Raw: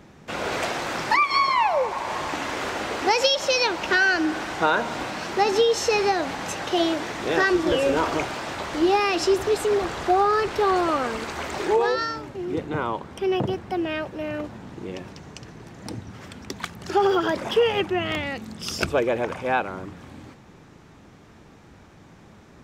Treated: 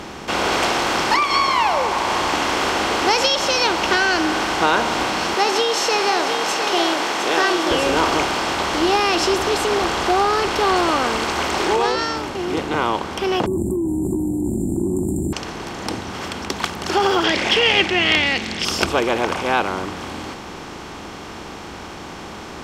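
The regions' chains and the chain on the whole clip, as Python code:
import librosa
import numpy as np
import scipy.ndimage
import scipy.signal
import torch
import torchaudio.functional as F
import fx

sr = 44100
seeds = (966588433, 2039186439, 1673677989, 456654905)

y = fx.chain(x, sr, fx.highpass(hz=390.0, slope=12),
    fx.echo_single(ms=706, db=-10.5), at=(5.34, 7.71))
y = fx.chain(y, sr, fx.brickwall_bandstop(low_hz=390.0, high_hz=7100.0),
    fx.env_flatten(amount_pct=100), at=(13.46, 15.33))
y = fx.chain(y, sr, fx.lowpass(hz=4800.0, slope=12),
    fx.high_shelf_res(hz=1600.0, db=8.5, q=3.0),
    fx.notch(hz=970.0, q=18.0), at=(17.24, 18.65))
y = fx.bin_compress(y, sr, power=0.6)
y = fx.graphic_eq(y, sr, hz=(125, 500, 2000), db=(-9, -5, -6))
y = y * librosa.db_to_amplitude(2.5)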